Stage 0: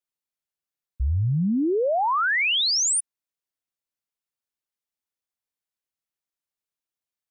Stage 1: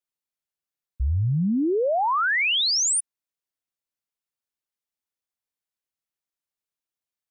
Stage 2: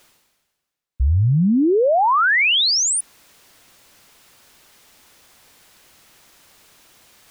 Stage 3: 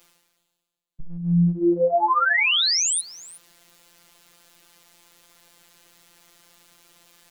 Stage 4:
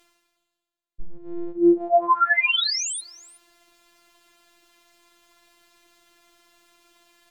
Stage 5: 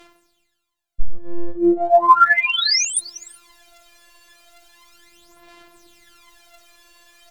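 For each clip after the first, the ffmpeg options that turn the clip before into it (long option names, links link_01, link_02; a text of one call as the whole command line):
ffmpeg -i in.wav -af anull out.wav
ffmpeg -i in.wav -af "highshelf=frequency=7400:gain=-7,areverse,acompressor=mode=upward:threshold=-31dB:ratio=2.5,areverse,volume=6.5dB" out.wav
ffmpeg -i in.wav -af "afftfilt=real='hypot(re,im)*cos(PI*b)':imag='0':win_size=1024:overlap=0.75,aecho=1:1:366:0.1" out.wav
ffmpeg -i in.wav -af "afftfilt=real='hypot(re,im)*cos(PI*b)':imag='0':win_size=512:overlap=0.75,aemphasis=mode=reproduction:type=cd,volume=3.5dB" out.wav
ffmpeg -i in.wav -af "aphaser=in_gain=1:out_gain=1:delay=1.8:decay=0.72:speed=0.36:type=sinusoidal,volume=5dB" out.wav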